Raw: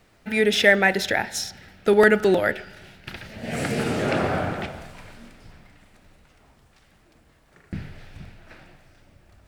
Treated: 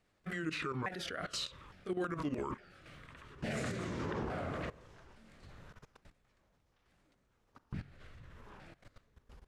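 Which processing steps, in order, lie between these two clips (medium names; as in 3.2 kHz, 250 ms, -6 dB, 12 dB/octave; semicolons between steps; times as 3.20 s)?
sawtooth pitch modulation -8.5 st, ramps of 860 ms; low-pass 11 kHz 12 dB/octave; level held to a coarse grid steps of 18 dB; random-step tremolo; peak limiter -29.5 dBFS, peak gain reduction 19 dB; trim +1 dB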